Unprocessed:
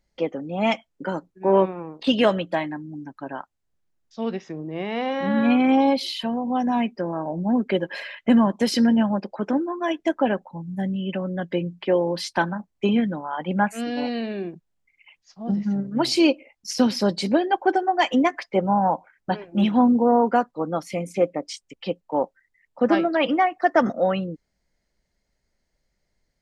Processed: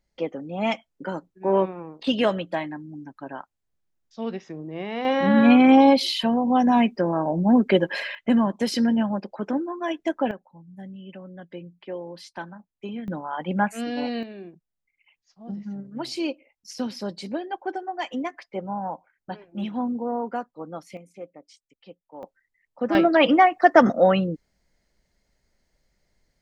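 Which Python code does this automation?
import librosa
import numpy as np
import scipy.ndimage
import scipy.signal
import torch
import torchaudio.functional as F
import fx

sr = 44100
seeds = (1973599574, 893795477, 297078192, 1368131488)

y = fx.gain(x, sr, db=fx.steps((0.0, -3.0), (5.05, 4.0), (8.15, -3.0), (10.31, -13.5), (13.08, -1.5), (14.23, -10.0), (20.97, -18.5), (22.23, -6.0), (22.95, 4.0)))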